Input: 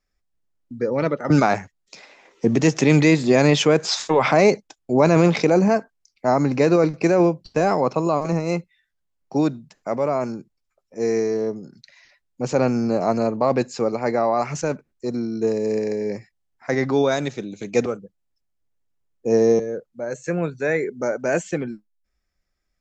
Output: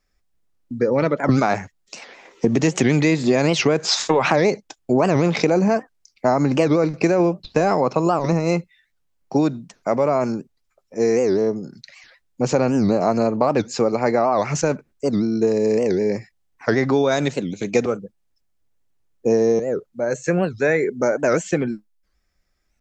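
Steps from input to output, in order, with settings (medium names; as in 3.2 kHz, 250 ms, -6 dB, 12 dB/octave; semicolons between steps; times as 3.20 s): compression 5:1, threshold -20 dBFS, peak gain reduction 9 dB; warped record 78 rpm, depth 250 cents; trim +6 dB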